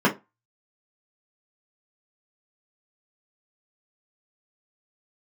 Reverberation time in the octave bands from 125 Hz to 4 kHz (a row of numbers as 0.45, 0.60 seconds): 0.25, 0.25, 0.20, 0.25, 0.20, 0.15 seconds